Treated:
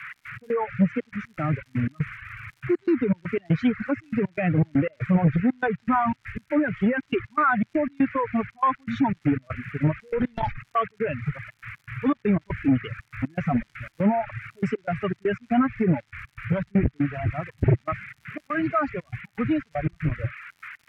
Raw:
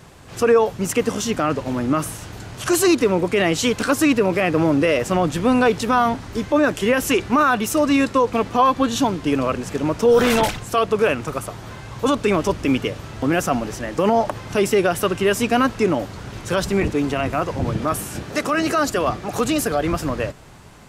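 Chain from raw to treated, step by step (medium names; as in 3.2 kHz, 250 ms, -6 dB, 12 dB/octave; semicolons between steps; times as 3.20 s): expander on every frequency bin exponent 2; tilt shelf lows +9.5 dB, about 1.5 kHz; level-controlled noise filter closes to 690 Hz, open at -9 dBFS; peak limiter -11 dBFS, peak gain reduction 9 dB; band noise 1.2–2.4 kHz -40 dBFS; trance gate "x.x.xxxx.x.x" 120 bpm -24 dB; reverb removal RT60 1.1 s; crackle 200 per s -45 dBFS; low-pass that closes with the level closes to 590 Hz, closed at -10 dBFS; graphic EQ 125/500/2000/8000 Hz +7/-9/+3/-3 dB; transformer saturation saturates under 270 Hz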